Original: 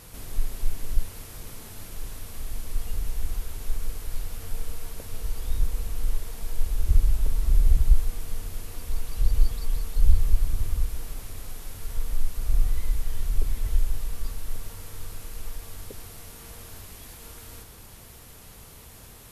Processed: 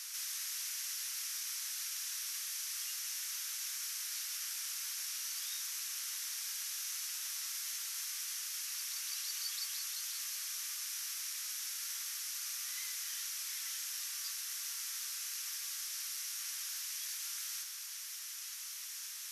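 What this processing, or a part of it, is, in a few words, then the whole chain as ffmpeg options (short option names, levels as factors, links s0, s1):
headphones lying on a table: -af "highpass=f=1500:w=0.5412,highpass=f=1500:w=1.3066,equalizer=f=5800:t=o:w=0.57:g=11.5,volume=1.33"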